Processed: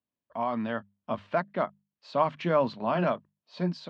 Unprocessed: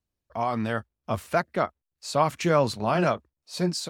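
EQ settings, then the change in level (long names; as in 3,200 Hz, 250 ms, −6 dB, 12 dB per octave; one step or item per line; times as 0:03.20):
loudspeaker in its box 130–4,000 Hz, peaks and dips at 180 Hz +6 dB, 250 Hz +8 dB, 610 Hz +6 dB, 1,000 Hz +7 dB, 1,700 Hz +3 dB, 3,100 Hz +4 dB
mains-hum notches 50/100/150/200 Hz
−7.5 dB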